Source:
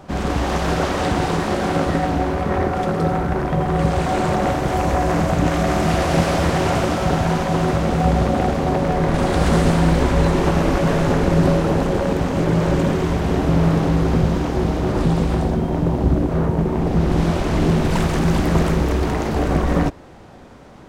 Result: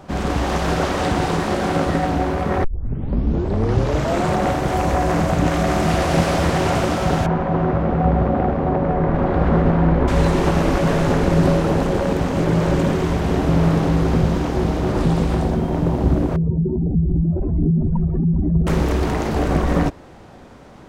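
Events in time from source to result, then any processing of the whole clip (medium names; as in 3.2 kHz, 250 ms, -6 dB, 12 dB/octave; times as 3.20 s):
2.64 s: tape start 1.63 s
7.26–10.08 s: low-pass 1.5 kHz
16.36–18.67 s: spectral contrast enhancement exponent 2.7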